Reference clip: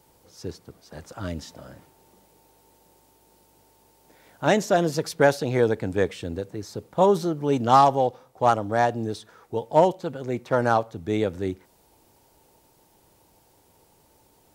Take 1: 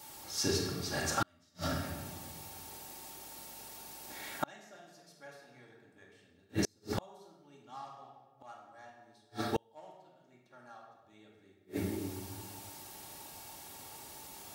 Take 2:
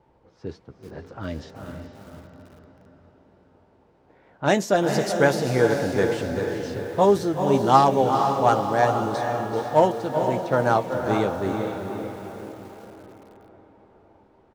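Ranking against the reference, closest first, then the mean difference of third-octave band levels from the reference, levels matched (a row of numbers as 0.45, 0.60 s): 2, 1; 7.5, 12.5 dB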